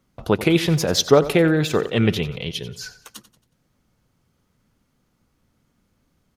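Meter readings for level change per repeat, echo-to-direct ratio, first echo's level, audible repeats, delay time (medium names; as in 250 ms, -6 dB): -8.0 dB, -14.0 dB, -15.0 dB, 3, 91 ms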